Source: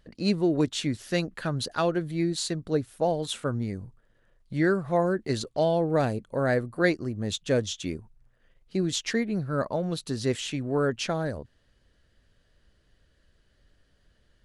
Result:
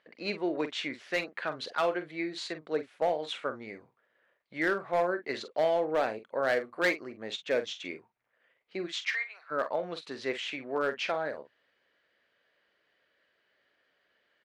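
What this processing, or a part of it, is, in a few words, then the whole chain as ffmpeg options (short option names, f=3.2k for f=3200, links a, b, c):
megaphone: -filter_complex "[0:a]asplit=3[a][b][c];[a]afade=t=out:st=8.86:d=0.02[d];[b]highpass=f=960:w=0.5412,highpass=f=960:w=1.3066,afade=t=in:st=8.86:d=0.02,afade=t=out:st=9.5:d=0.02[e];[c]afade=t=in:st=9.5:d=0.02[f];[d][e][f]amix=inputs=3:normalize=0,highpass=520,lowpass=3.1k,equalizer=f=2.2k:t=o:w=0.4:g=6.5,asoftclip=type=hard:threshold=-20.5dB,asplit=2[g][h];[h]adelay=45,volume=-11dB[i];[g][i]amix=inputs=2:normalize=0"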